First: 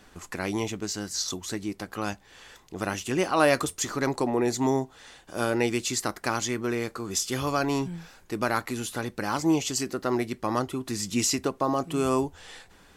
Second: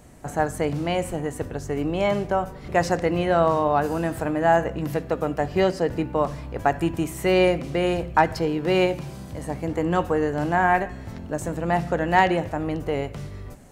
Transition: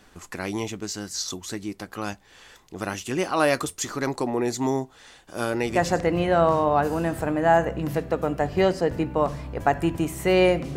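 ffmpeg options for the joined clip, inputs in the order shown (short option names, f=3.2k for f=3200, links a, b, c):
-filter_complex "[0:a]apad=whole_dur=10.76,atrim=end=10.76,atrim=end=6.01,asetpts=PTS-STARTPTS[a];[1:a]atrim=start=2.44:end=7.75,asetpts=PTS-STARTPTS[b];[a][b]acrossfade=d=0.56:c1=qsin:c2=qsin"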